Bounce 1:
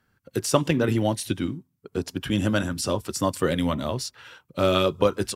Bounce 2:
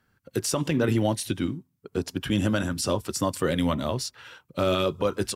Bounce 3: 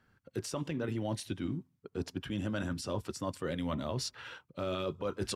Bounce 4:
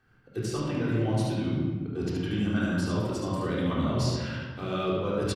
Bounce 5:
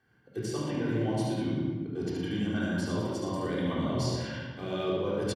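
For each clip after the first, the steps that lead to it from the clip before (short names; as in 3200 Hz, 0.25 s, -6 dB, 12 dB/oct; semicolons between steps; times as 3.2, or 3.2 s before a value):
limiter -13.5 dBFS, peak gain reduction 9.5 dB
high shelf 7500 Hz -12 dB; reverse; compressor 5:1, threshold -33 dBFS, peak gain reduction 12.5 dB; reverse
echo 73 ms -4.5 dB; reverb RT60 1.5 s, pre-delay 3 ms, DRR -6 dB; gain -1.5 dB
notch comb 1300 Hz; echo 0.115 s -9 dB; gain -1.5 dB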